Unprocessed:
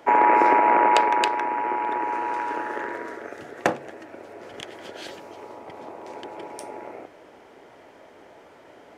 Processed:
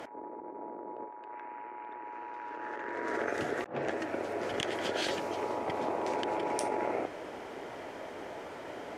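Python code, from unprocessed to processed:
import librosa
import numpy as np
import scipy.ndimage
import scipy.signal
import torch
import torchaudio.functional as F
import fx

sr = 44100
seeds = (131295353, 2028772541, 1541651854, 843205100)

y = fx.env_lowpass_down(x, sr, base_hz=450.0, full_db=-14.0)
y = fx.over_compress(y, sr, threshold_db=-38.0, ratio=-1.0)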